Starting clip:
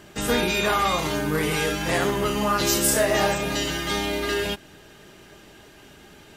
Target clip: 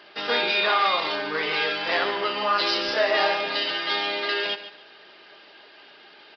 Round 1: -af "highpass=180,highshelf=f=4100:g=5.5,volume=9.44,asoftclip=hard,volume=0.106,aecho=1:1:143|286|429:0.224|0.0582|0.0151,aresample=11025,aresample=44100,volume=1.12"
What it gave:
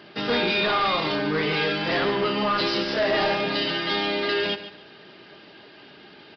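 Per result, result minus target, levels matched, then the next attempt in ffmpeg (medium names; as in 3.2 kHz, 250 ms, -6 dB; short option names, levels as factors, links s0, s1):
250 Hz band +9.5 dB; overload inside the chain: distortion +13 dB
-af "highpass=540,highshelf=f=4100:g=5.5,volume=9.44,asoftclip=hard,volume=0.106,aecho=1:1:143|286|429:0.224|0.0582|0.0151,aresample=11025,aresample=44100,volume=1.12"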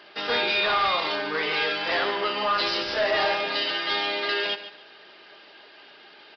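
overload inside the chain: distortion +13 dB
-af "highpass=540,highshelf=f=4100:g=5.5,volume=3.76,asoftclip=hard,volume=0.266,aecho=1:1:143|286|429:0.224|0.0582|0.0151,aresample=11025,aresample=44100,volume=1.12"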